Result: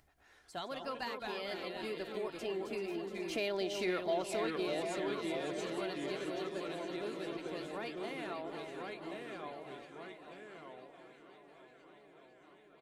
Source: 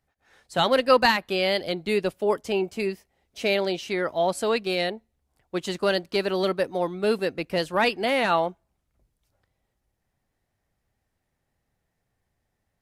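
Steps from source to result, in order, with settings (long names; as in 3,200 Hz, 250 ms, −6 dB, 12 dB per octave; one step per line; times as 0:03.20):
source passing by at 0:03.91, 8 m/s, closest 2.7 metres
on a send: delay that swaps between a low-pass and a high-pass 246 ms, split 1,300 Hz, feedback 81%, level −8 dB
on the sum: delay with pitch and tempo change per echo 93 ms, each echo −2 semitones, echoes 2, each echo −6 dB
in parallel at −8 dB: soft clipping −27.5 dBFS, distortion −9 dB
on the sum: downward compressor 2.5 to 1, threshold −39 dBFS, peak gain reduction 13.5 dB
comb filter 2.9 ms, depth 32%
upward compression, threshold −53 dBFS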